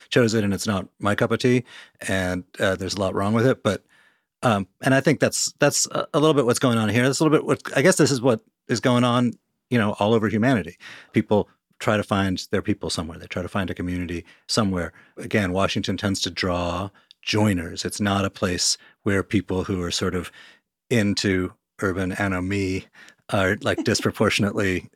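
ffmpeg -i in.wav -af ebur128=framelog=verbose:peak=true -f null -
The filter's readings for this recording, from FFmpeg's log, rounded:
Integrated loudness:
  I:         -22.5 LUFS
  Threshold: -32.9 LUFS
Loudness range:
  LRA:         5.3 LU
  Threshold: -42.9 LUFS
  LRA low:   -25.3 LUFS
  LRA high:  -20.0 LUFS
True peak:
  Peak:       -3.8 dBFS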